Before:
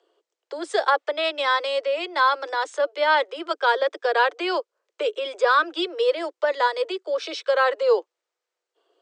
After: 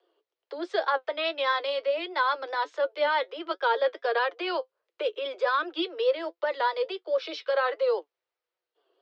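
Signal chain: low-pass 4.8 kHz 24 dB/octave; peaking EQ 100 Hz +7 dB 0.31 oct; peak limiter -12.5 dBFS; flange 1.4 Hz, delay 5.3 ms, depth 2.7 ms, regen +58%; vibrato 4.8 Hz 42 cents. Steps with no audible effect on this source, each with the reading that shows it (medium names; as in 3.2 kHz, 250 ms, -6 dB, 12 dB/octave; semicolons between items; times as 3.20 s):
peaking EQ 100 Hz: input has nothing below 270 Hz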